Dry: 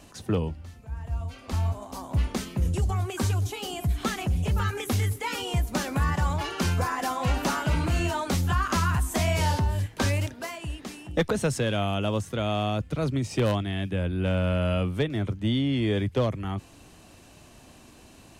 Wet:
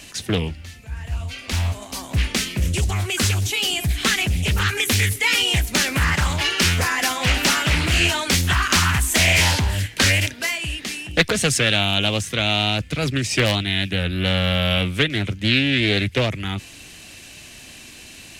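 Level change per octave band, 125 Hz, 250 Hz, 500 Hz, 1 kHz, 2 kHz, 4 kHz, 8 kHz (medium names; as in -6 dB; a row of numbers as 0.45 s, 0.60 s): +4.0 dB, +3.5 dB, +3.0 dB, +3.5 dB, +14.0 dB, +16.0 dB, +14.0 dB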